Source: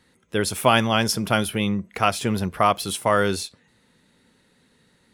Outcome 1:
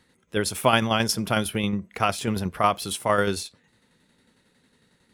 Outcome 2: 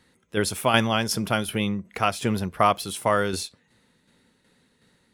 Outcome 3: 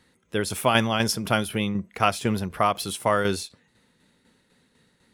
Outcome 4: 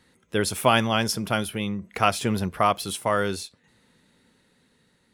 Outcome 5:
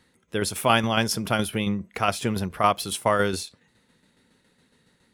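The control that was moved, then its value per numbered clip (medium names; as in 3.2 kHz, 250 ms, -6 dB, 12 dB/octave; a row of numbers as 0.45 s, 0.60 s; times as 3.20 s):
tremolo, rate: 11 Hz, 2.7 Hz, 4 Hz, 0.55 Hz, 7.2 Hz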